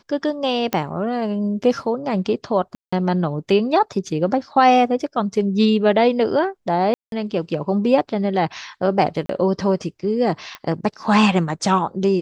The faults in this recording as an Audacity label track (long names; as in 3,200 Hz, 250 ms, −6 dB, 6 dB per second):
0.730000	0.730000	click −6 dBFS
2.750000	2.920000	drop-out 175 ms
6.940000	7.120000	drop-out 182 ms
9.260000	9.290000	drop-out 33 ms
10.550000	10.550000	click −16 dBFS